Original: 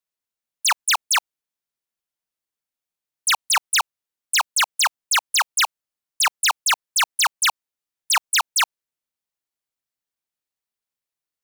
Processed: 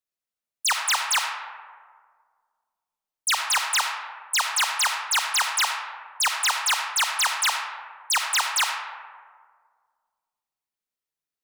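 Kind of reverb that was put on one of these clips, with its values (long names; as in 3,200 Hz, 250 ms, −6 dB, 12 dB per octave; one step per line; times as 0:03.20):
comb and all-pass reverb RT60 1.8 s, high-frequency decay 0.4×, pre-delay 15 ms, DRR 2.5 dB
level −4 dB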